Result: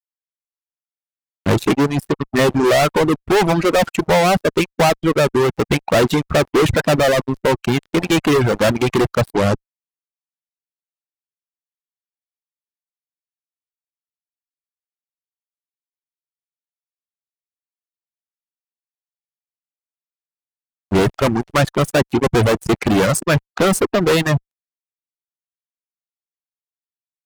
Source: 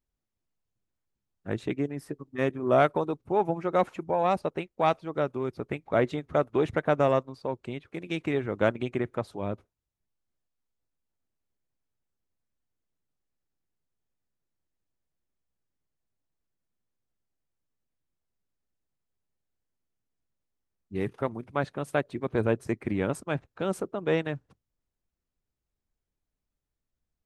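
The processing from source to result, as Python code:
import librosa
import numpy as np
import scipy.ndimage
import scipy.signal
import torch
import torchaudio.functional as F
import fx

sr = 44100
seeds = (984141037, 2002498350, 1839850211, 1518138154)

y = fx.fuzz(x, sr, gain_db=39.0, gate_db=-46.0)
y = fx.dereverb_blind(y, sr, rt60_s=1.2)
y = y * 10.0 ** (2.5 / 20.0)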